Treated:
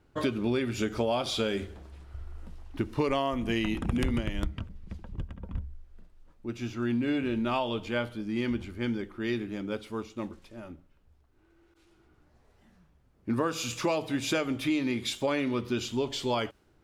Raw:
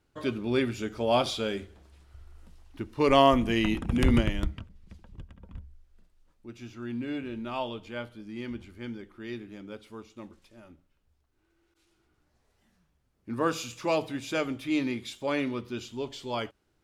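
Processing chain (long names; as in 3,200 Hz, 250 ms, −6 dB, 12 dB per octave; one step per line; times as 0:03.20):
downward compressor 16 to 1, threshold −33 dBFS, peak gain reduction 19 dB
one half of a high-frequency compander decoder only
level +8.5 dB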